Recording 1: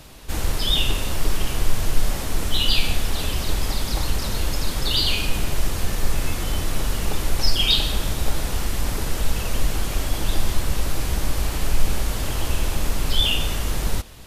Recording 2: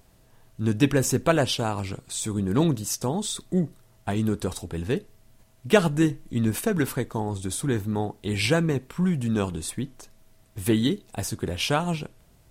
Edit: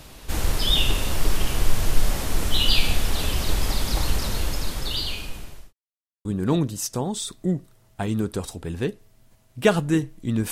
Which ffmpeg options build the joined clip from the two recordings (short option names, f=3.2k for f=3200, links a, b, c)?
-filter_complex "[0:a]apad=whole_dur=10.51,atrim=end=10.51,asplit=2[a][b];[a]atrim=end=5.73,asetpts=PTS-STARTPTS,afade=t=out:st=4.12:d=1.61[c];[b]atrim=start=5.73:end=6.25,asetpts=PTS-STARTPTS,volume=0[d];[1:a]atrim=start=2.33:end=6.59,asetpts=PTS-STARTPTS,afade=t=in:d=0.004:c=hsin[e];[c][d][e]concat=n=3:v=0:a=1"